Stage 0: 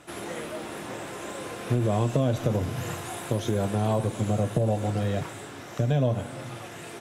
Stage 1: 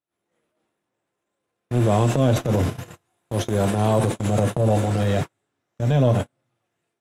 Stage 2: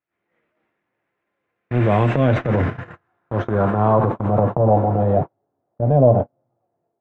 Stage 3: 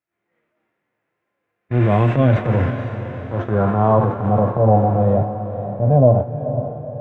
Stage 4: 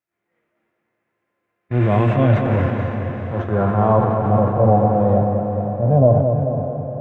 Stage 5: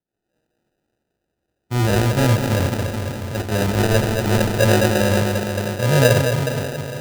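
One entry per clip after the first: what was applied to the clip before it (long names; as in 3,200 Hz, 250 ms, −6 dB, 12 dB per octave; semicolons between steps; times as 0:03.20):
noise gate −28 dBFS, range −49 dB; transient designer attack −10 dB, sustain +6 dB; level +6.5 dB
low-pass filter sweep 2,100 Hz → 700 Hz, 0:02.19–0:05.41; level +1.5 dB
feedback delay with all-pass diffusion 492 ms, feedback 47%, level −10 dB; harmonic and percussive parts rebalanced harmonic +9 dB; level −6.5 dB
bucket-brigade delay 217 ms, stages 4,096, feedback 60%, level −6.5 dB; level −1 dB
sample-rate reduction 1,100 Hz, jitter 0%; level −1.5 dB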